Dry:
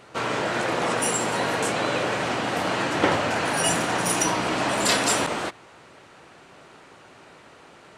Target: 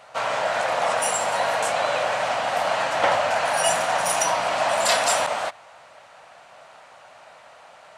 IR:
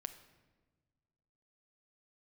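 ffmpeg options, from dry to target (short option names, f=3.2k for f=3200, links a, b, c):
-af "lowshelf=f=480:t=q:w=3:g=-9.5"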